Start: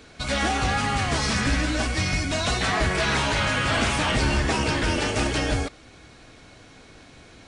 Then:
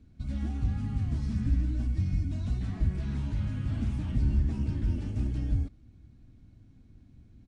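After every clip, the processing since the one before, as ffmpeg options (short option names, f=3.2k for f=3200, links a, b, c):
-af "firequalizer=gain_entry='entry(100,0);entry(160,-6);entry(220,-4);entry(450,-25);entry(1200,-29)':delay=0.05:min_phase=1"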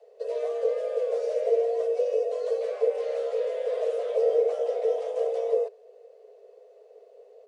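-af "afreqshift=400,volume=2dB"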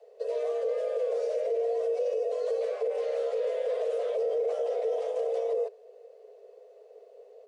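-af "alimiter=limit=-22.5dB:level=0:latency=1:release=30"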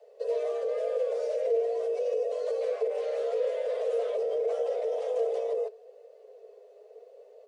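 -af "flanger=delay=3.3:depth=1.8:regen=63:speed=0.82:shape=sinusoidal,volume=4.5dB"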